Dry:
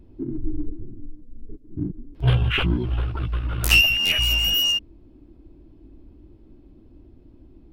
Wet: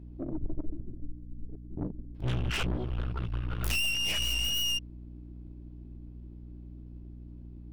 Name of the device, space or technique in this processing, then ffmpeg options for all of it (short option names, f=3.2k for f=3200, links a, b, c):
valve amplifier with mains hum: -af "aeval=exprs='(tanh(20*val(0)+0.8)-tanh(0.8))/20':c=same,aeval=exprs='val(0)+0.00794*(sin(2*PI*60*n/s)+sin(2*PI*2*60*n/s)/2+sin(2*PI*3*60*n/s)/3+sin(2*PI*4*60*n/s)/4+sin(2*PI*5*60*n/s)/5)':c=same,volume=-2dB"